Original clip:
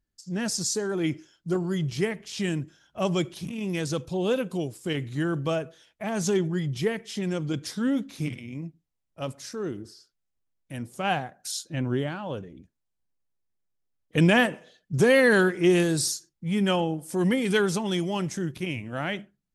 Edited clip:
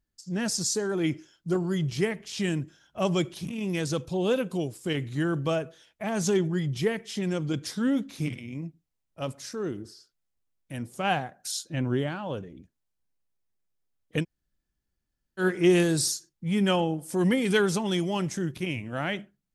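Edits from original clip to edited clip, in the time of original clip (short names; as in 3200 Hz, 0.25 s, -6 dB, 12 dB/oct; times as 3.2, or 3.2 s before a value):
14.2–15.42 room tone, crossfade 0.10 s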